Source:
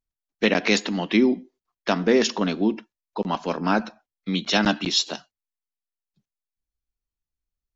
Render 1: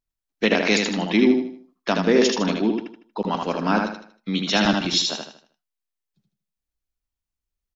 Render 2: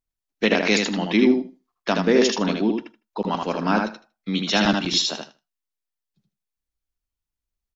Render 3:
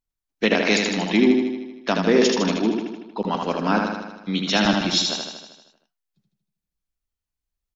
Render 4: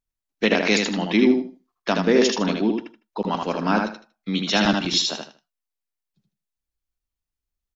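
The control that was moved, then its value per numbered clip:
feedback delay, feedback: 36%, 15%, 61%, 23%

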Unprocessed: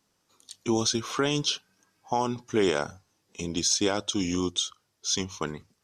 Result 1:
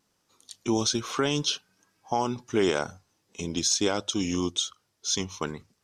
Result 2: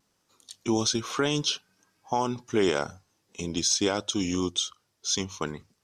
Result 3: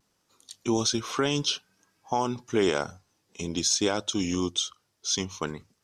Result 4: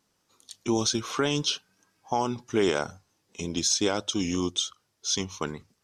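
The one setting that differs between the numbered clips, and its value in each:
vibrato, rate: 2.2 Hz, 1 Hz, 0.57 Hz, 5.8 Hz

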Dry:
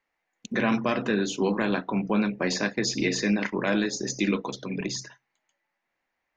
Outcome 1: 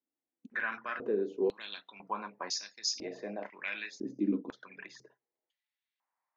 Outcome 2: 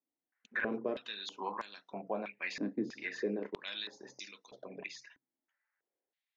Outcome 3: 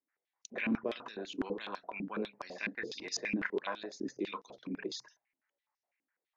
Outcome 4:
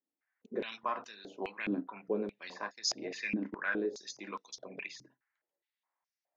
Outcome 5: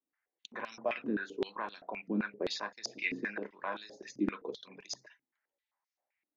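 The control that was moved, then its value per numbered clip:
step-sequenced band-pass, rate: 2 Hz, 3.1 Hz, 12 Hz, 4.8 Hz, 7.7 Hz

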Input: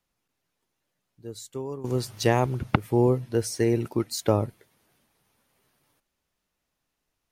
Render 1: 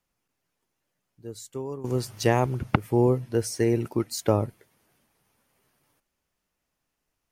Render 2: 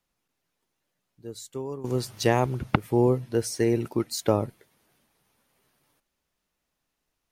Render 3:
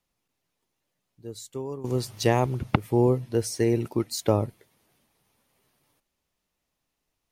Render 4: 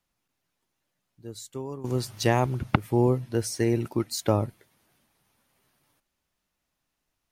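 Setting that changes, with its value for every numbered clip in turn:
peaking EQ, frequency: 3.8 kHz, 100 Hz, 1.5 kHz, 450 Hz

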